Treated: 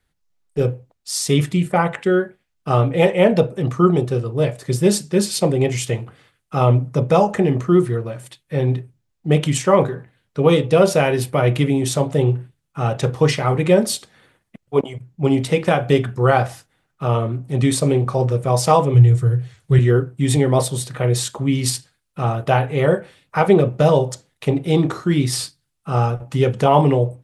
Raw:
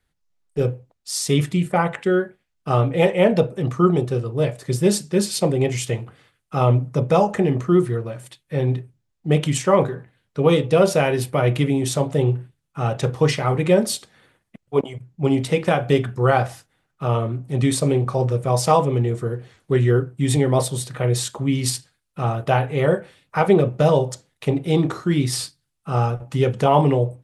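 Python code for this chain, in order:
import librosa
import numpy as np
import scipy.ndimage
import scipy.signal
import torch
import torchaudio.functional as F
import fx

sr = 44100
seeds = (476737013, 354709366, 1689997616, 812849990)

y = fx.graphic_eq_10(x, sr, hz=(125, 250, 500, 1000, 8000), db=(12, -11, -3, -4, 3), at=(18.94, 19.79))
y = F.gain(torch.from_numpy(y), 2.0).numpy()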